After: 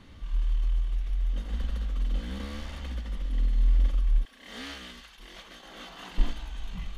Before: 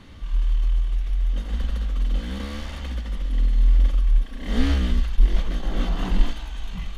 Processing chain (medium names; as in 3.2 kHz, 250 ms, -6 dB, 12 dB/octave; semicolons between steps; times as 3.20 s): 4.25–6.18 s: high-pass 1.3 kHz 6 dB/octave; trim -5.5 dB